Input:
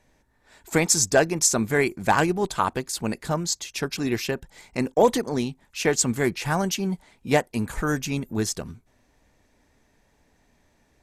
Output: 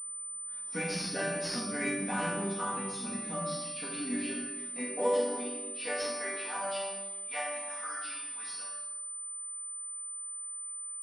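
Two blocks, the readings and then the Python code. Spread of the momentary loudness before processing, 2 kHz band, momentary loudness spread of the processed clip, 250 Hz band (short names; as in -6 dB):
10 LU, -8.5 dB, 6 LU, -11.0 dB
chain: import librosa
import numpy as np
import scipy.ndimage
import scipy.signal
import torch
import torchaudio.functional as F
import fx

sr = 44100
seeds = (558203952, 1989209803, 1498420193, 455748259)

p1 = fx.freq_compress(x, sr, knee_hz=3100.0, ratio=1.5)
p2 = np.clip(10.0 ** (14.5 / 20.0) * p1, -1.0, 1.0) / 10.0 ** (14.5 / 20.0)
p3 = p1 + (p2 * librosa.db_to_amplitude(-6.5))
p4 = fx.low_shelf(p3, sr, hz=350.0, db=10.0)
p5 = p4 + fx.echo_feedback(p4, sr, ms=120, feedback_pct=58, wet_db=-22.0, dry=0)
p6 = fx.filter_sweep_highpass(p5, sr, from_hz=170.0, to_hz=1000.0, start_s=3.38, end_s=7.25, q=1.4)
p7 = fx.resonator_bank(p6, sr, root=55, chord='major', decay_s=0.51)
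p8 = fx.room_shoebox(p7, sr, seeds[0], volume_m3=560.0, walls='mixed', distance_m=1.8)
p9 = p8 + 10.0 ** (-63.0 / 20.0) * np.sin(2.0 * np.pi * 1200.0 * np.arange(len(p8)) / sr)
p10 = fx.tilt_shelf(p9, sr, db=-6.5, hz=1200.0)
y = fx.pwm(p10, sr, carrier_hz=9000.0)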